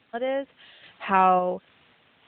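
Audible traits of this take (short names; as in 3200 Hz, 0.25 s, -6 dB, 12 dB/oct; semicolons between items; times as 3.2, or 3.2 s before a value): a quantiser's noise floor 8-bit, dither triangular; random-step tremolo 3.6 Hz; AMR-NB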